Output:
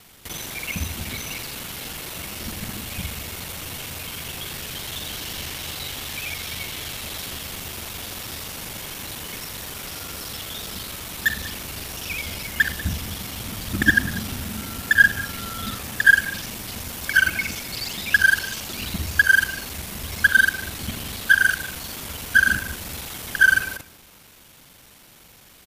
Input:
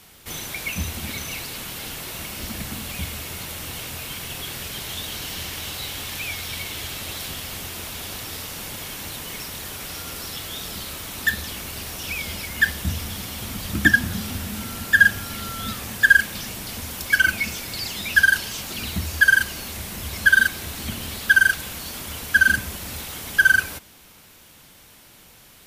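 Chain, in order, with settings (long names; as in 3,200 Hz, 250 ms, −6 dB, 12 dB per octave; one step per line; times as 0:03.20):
reversed piece by piece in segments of 42 ms
slap from a distant wall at 33 metres, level −17 dB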